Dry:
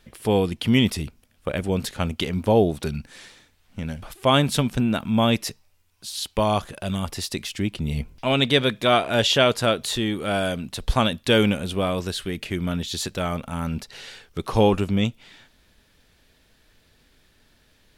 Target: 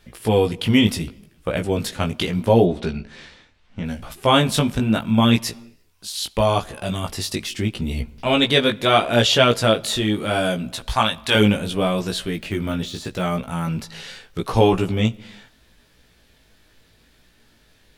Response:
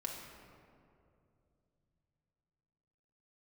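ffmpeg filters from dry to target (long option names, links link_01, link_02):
-filter_complex "[0:a]asettb=1/sr,asplit=3[link_01][link_02][link_03];[link_01]atrim=end=2.644[link_04];[link_02]atrim=start=2.64:end=3.84,asetpts=PTS-STARTPTS,afade=type=in:duration=0.004:curve=qsin,afade=type=out:start_time=1.196:duration=0.004:curve=qsin,lowpass=4500[link_05];[link_03]atrim=start=3.836[link_06];[link_04][link_05]acrossfade=duration=0.004:curve1=hsin:curve2=qsin[link_07];[link_07][link_06]acrossfade=duration=0.004:curve1=qsin:curve2=hsin,asettb=1/sr,asplit=3[link_08][link_09][link_10];[link_08]atrim=end=10.744[link_11];[link_09]atrim=start=10.74:end=11.35,asetpts=PTS-STARTPTS,afade=type=in:duration=0.004:curve=qsin,afade=type=out:start_time=0.606:duration=0.004:curve=qsin,lowshelf=frequency=620:width_type=q:width=1.5:gain=-8[link_12];[link_10]atrim=start=11.346[link_13];[link_11][link_12]acrossfade=duration=0.004:curve1=hsin:curve2=qsin[link_14];[link_14][link_13]acrossfade=duration=0.004:curve1=qsin:curve2=hsin,asettb=1/sr,asplit=3[link_15][link_16][link_17];[link_15]atrim=end=12.344[link_18];[link_16]atrim=start=12.34:end=13.22,asetpts=PTS-STARTPTS,afade=type=in:duration=0.004:curve=qsin,afade=type=out:start_time=0.876:duration=0.004:curve=qsin,deesser=0.85[link_19];[link_17]atrim=start=13.216[link_20];[link_18][link_19]acrossfade=duration=0.004:curve1=hsin:curve2=qsin[link_21];[link_21][link_20]acrossfade=duration=0.004:curve1=qsin:curve2=hsin,flanger=delay=16.5:depth=2.9:speed=0.75,asplit=2[link_22][link_23];[1:a]atrim=start_sample=2205,afade=type=out:start_time=0.42:duration=0.01,atrim=end_sample=18963,adelay=17[link_24];[link_23][link_24]afir=irnorm=-1:irlink=0,volume=-19.5dB[link_25];[link_22][link_25]amix=inputs=2:normalize=0,volume=6dB"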